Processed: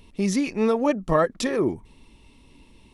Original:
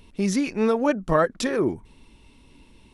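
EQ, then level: notch 1500 Hz, Q 7.1; 0.0 dB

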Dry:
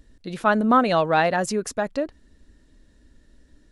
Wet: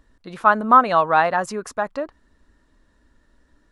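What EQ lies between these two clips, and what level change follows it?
bell 1100 Hz +14 dB 1.3 oct; -5.5 dB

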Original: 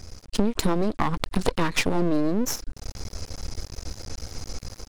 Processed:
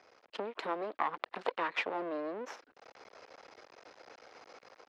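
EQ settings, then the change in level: HPF 310 Hz 12 dB/oct; air absorption 54 m; three-band isolator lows -17 dB, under 430 Hz, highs -24 dB, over 3200 Hz; -5.0 dB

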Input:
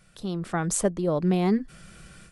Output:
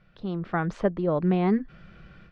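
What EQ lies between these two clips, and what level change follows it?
LPF 5400 Hz 12 dB/oct; dynamic EQ 1500 Hz, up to +4 dB, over -41 dBFS, Q 0.72; air absorption 290 m; 0.0 dB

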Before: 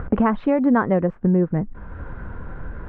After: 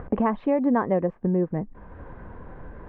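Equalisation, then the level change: low shelf 240 Hz -10 dB; bell 1400 Hz -11.5 dB 0.24 oct; high shelf 2100 Hz -9.5 dB; 0.0 dB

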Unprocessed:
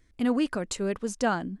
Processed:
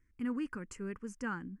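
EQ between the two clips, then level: high shelf 8400 Hz -10.5 dB; fixed phaser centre 1600 Hz, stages 4; -8.0 dB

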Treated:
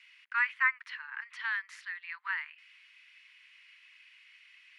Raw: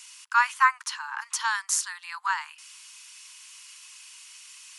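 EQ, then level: resonant high-pass 2000 Hz, resonance Q 4.1; air absorption 400 m; -6.0 dB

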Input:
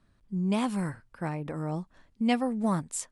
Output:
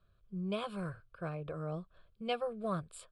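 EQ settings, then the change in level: air absorption 68 m; fixed phaser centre 1300 Hz, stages 8; notch 2800 Hz, Q 19; -2.0 dB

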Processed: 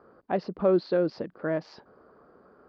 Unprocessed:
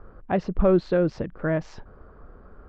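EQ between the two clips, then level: HPF 250 Hz 12 dB/oct; synth low-pass 4700 Hz, resonance Q 6.5; high shelf 2000 Hz -11 dB; -1.5 dB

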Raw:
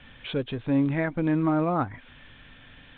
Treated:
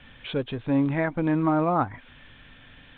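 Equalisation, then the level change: dynamic EQ 910 Hz, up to +5 dB, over -40 dBFS, Q 1.3; 0.0 dB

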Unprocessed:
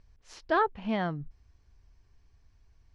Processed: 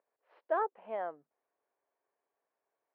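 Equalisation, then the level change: ladder high-pass 450 Hz, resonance 45%; Bessel low-pass 1900 Hz, order 2; air absorption 460 m; +3.0 dB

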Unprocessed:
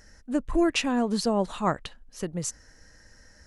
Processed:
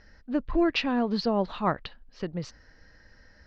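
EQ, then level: elliptic low-pass 4700 Hz, stop band 80 dB; 0.0 dB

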